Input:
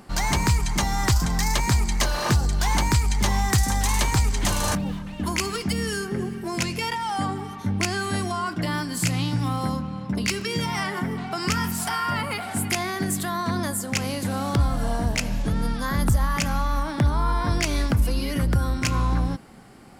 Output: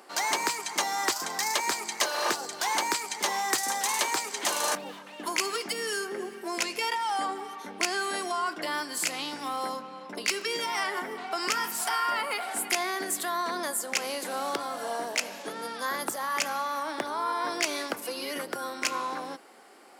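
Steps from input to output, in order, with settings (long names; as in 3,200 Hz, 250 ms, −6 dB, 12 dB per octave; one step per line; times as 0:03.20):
high-pass filter 360 Hz 24 dB per octave
level −1.5 dB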